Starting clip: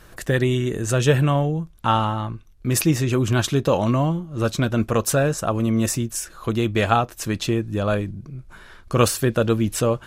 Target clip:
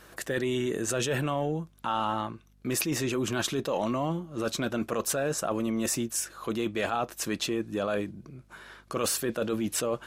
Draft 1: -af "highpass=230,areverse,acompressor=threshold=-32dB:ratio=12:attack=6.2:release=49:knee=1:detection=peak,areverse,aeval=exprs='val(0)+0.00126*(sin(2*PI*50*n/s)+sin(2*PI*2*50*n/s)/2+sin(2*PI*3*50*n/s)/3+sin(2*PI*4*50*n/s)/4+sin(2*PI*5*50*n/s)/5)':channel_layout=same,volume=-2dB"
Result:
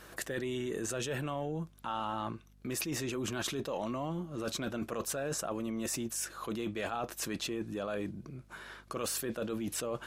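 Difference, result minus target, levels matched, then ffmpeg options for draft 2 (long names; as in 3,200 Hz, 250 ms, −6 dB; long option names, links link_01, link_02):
downward compressor: peak gain reduction +7.5 dB
-af "highpass=230,areverse,acompressor=threshold=-24dB:ratio=12:attack=6.2:release=49:knee=1:detection=peak,areverse,aeval=exprs='val(0)+0.00126*(sin(2*PI*50*n/s)+sin(2*PI*2*50*n/s)/2+sin(2*PI*3*50*n/s)/3+sin(2*PI*4*50*n/s)/4+sin(2*PI*5*50*n/s)/5)':channel_layout=same,volume=-2dB"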